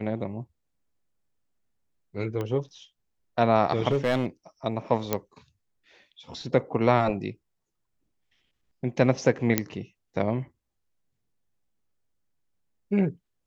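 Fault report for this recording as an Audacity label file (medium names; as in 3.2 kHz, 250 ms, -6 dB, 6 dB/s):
2.410000	2.410000	pop -19 dBFS
3.880000	4.260000	clipped -18.5 dBFS
5.130000	5.130000	pop -9 dBFS
9.580000	9.580000	pop -5 dBFS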